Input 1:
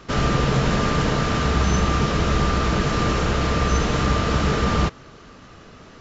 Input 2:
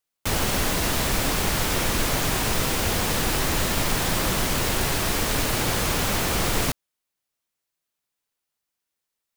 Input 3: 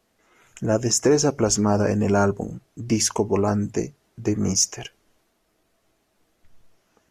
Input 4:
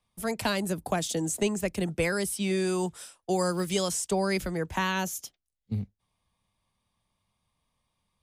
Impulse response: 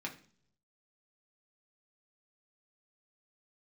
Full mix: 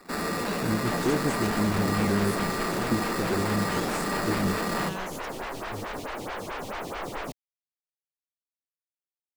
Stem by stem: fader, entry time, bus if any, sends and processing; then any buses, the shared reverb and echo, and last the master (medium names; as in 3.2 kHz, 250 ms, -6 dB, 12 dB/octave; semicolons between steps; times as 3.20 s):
-2.5 dB, 0.00 s, no send, Chebyshev high-pass 160 Hz, order 10; sample-rate reducer 3.1 kHz, jitter 0%; saturation -23 dBFS, distortion -11 dB
-7.5 dB, 0.60 s, no send, overdrive pedal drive 16 dB, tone 1.1 kHz, clips at -9.5 dBFS; lamp-driven phase shifter 4.6 Hz
-5.5 dB, 0.00 s, no send, inverse Chebyshev band-stop 740–8800 Hz, stop band 40 dB
-10.5 dB, 0.00 s, no send, none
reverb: none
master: crossover distortion -59 dBFS